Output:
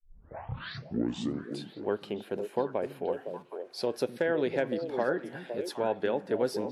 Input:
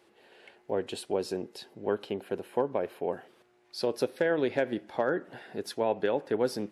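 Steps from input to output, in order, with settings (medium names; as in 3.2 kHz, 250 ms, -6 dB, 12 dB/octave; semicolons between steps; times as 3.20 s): tape start-up on the opening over 1.71 s; repeats whose band climbs or falls 255 ms, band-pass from 170 Hz, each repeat 1.4 oct, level -2.5 dB; trim -1.5 dB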